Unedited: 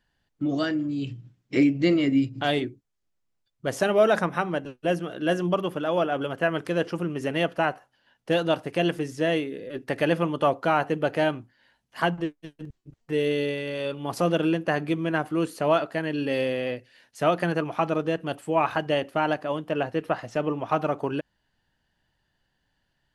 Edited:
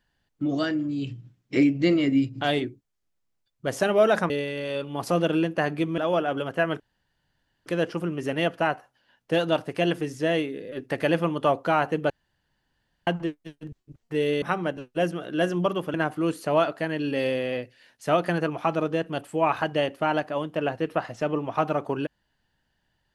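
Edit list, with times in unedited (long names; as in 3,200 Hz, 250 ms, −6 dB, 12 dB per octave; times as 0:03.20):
0:04.30–0:05.82: swap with 0:13.40–0:15.08
0:06.64: splice in room tone 0.86 s
0:11.08–0:12.05: fill with room tone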